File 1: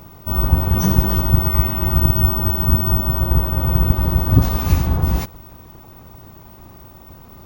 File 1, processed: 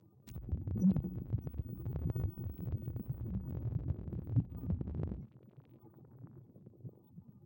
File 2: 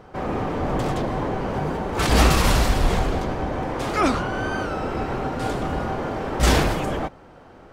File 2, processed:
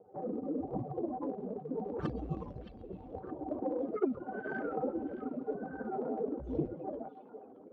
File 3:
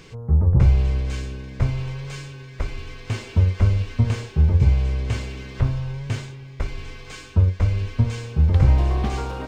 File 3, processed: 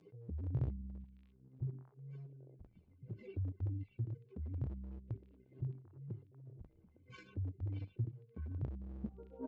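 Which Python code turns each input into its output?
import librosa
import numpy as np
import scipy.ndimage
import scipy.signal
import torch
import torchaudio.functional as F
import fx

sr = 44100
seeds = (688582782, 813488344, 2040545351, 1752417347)

p1 = fx.spec_expand(x, sr, power=2.9)
p2 = fx.peak_eq(p1, sr, hz=1700.0, db=-11.0, octaves=2.3)
p3 = fx.level_steps(p2, sr, step_db=12)
p4 = p2 + F.gain(torch.from_numpy(p3), 0.0).numpy()
p5 = fx.rotary(p4, sr, hz=0.8)
p6 = fx.env_flanger(p5, sr, rest_ms=10.9, full_db=-12.0)
p7 = fx.transient(p6, sr, attack_db=0, sustain_db=-7)
p8 = fx.bandpass_edges(p7, sr, low_hz=340.0, high_hz=6500.0)
p9 = p8 + fx.echo_stepped(p8, sr, ms=619, hz=3100.0, octaves=-1.4, feedback_pct=70, wet_db=-6.0, dry=0)
y = F.gain(torch.from_numpy(p9), -1.0).numpy()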